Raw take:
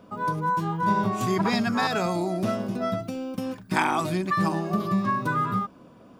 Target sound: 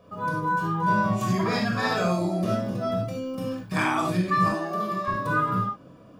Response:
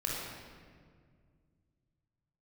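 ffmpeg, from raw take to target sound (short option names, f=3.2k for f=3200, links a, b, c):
-filter_complex "[0:a]asettb=1/sr,asplit=3[a][b][c];[a]atrim=end=4.444[d];[b]atrim=start=4.44:end=5.08,asetpts=PTS-STARTPTS,afade=t=in:d=0.004:c=qsin,afade=t=out:st=0.636:d=0.004:c=qsin,highpass=320[e];[c]atrim=start=5.076[f];[d][e]acrossfade=d=0.004:c1=hsin:c2=qsin[g];[g][f]acrossfade=d=0.004:c1=qsin:c2=hsin[h];[1:a]atrim=start_sample=2205,afade=t=out:st=0.15:d=0.01,atrim=end_sample=7056[i];[h][i]afir=irnorm=-1:irlink=0,volume=-3dB"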